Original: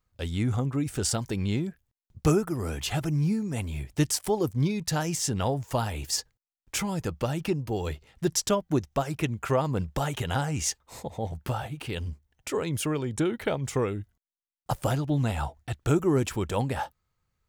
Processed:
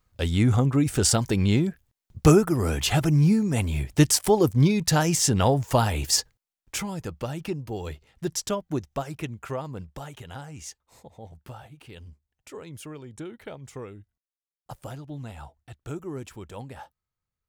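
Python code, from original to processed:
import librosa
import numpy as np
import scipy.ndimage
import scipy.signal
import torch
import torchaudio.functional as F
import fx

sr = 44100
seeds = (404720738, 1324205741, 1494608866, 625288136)

y = fx.gain(x, sr, db=fx.line((6.18, 6.5), (6.96, -3.0), (8.98, -3.0), (10.22, -11.5)))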